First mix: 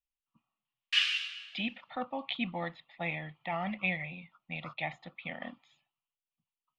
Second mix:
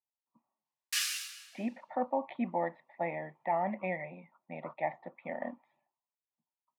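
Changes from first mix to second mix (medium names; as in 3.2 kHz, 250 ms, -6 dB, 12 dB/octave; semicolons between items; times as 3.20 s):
speech: add cabinet simulation 220–2200 Hz, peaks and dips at 240 Hz +5 dB, 400 Hz +9 dB, 590 Hz +9 dB, 920 Hz +9 dB, 1.3 kHz -9 dB, 1.9 kHz +4 dB; master: remove resonant low-pass 3 kHz, resonance Q 3.6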